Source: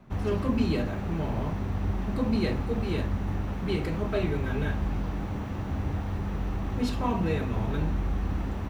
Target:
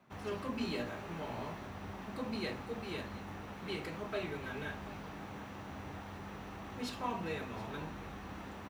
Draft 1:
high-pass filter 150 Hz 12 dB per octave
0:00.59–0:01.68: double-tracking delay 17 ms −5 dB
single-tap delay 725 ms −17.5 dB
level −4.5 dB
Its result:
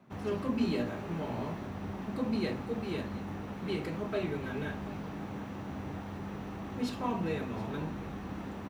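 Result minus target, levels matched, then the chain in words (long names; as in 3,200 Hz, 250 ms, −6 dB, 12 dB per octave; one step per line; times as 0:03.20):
250 Hz band +2.5 dB
high-pass filter 150 Hz 12 dB per octave
parametric band 200 Hz −8.5 dB 3 octaves
0:00.59–0:01.68: double-tracking delay 17 ms −5 dB
single-tap delay 725 ms −17.5 dB
level −4.5 dB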